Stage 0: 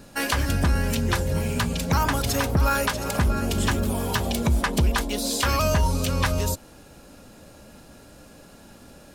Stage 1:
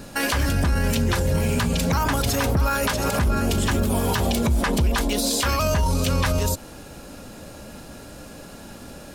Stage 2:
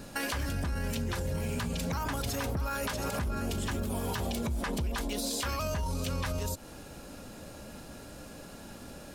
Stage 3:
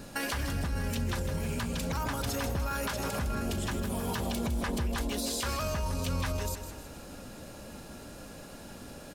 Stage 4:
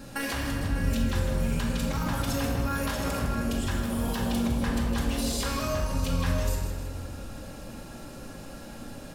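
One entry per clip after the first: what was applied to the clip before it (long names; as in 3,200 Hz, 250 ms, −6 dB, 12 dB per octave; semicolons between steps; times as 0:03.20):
brickwall limiter −21 dBFS, peak gain reduction 9 dB; level +7.5 dB
downward compressor 2.5 to 1, threshold −26 dBFS, peak gain reduction 6.5 dB; level −6 dB
repeating echo 158 ms, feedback 47%, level −9.5 dB
convolution reverb RT60 1.4 s, pre-delay 4 ms, DRR −2 dB; level −1.5 dB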